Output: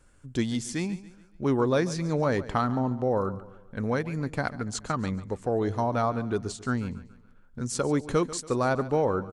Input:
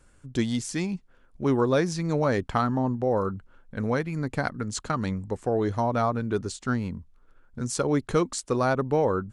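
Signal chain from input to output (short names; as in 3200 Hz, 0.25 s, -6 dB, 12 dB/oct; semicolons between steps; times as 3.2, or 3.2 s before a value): feedback echo 0.141 s, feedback 42%, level -16.5 dB; gain -1.5 dB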